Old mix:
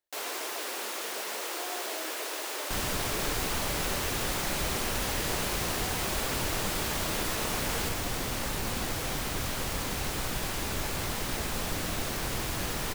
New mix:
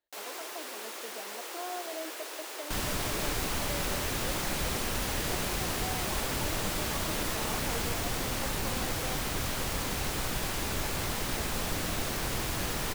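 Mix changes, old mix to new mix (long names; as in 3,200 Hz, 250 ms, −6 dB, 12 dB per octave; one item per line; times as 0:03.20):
speech +4.0 dB
first sound −5.5 dB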